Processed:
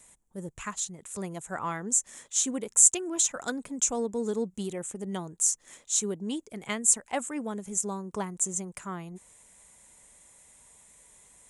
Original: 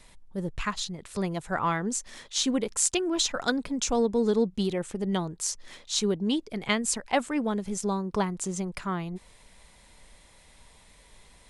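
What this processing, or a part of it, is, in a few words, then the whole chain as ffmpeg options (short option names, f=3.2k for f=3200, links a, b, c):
budget condenser microphone: -af "highpass=f=110:p=1,highshelf=f=5.8k:t=q:w=3:g=8,volume=-5.5dB"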